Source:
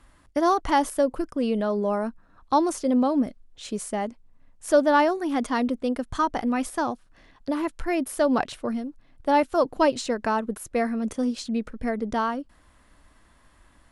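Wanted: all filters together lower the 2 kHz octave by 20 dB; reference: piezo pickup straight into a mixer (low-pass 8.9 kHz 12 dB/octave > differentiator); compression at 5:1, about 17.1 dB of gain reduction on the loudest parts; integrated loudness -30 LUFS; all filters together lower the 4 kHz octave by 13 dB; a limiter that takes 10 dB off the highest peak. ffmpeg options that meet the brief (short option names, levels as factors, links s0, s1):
-af "equalizer=f=2000:t=o:g=-9,equalizer=f=4000:t=o:g=-7.5,acompressor=threshold=0.02:ratio=5,alimiter=level_in=2.24:limit=0.0631:level=0:latency=1,volume=0.447,lowpass=8900,aderivative,volume=14.1"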